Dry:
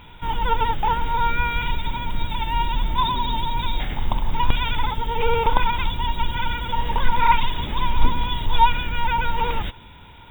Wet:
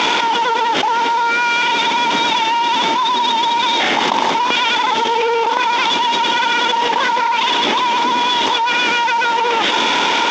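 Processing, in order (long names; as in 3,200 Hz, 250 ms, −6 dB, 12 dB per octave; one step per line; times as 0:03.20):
variable-slope delta modulation 32 kbit/s
high-pass filter 290 Hz 24 dB per octave
envelope flattener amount 100%
level −3.5 dB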